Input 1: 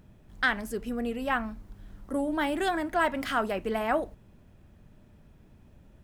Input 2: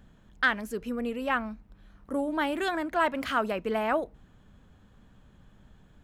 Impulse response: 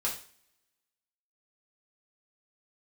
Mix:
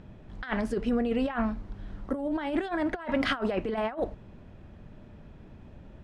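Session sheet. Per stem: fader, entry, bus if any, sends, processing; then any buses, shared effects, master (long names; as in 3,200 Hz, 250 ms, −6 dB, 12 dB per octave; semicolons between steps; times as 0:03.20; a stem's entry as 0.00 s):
+2.5 dB, 0.00 s, no send, low-pass filter 4,300 Hz 12 dB per octave
−18.5 dB, 0.00 s, no send, high-pass filter 270 Hz 24 dB per octave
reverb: not used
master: parametric band 550 Hz +2.5 dB 2.5 octaves; compressor whose output falls as the input rises −28 dBFS, ratio −0.5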